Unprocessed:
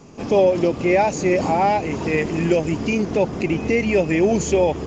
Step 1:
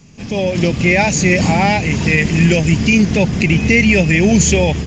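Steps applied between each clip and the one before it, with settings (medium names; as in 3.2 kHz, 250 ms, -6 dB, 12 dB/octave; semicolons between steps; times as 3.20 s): high-order bell 610 Hz -12.5 dB 2.6 oct; level rider gain up to 11.5 dB; loudness maximiser +4.5 dB; trim -1 dB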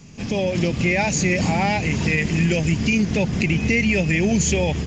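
compression 2:1, threshold -22 dBFS, peak gain reduction 8.5 dB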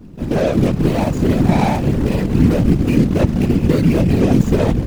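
median filter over 41 samples; whisper effect; trim +7 dB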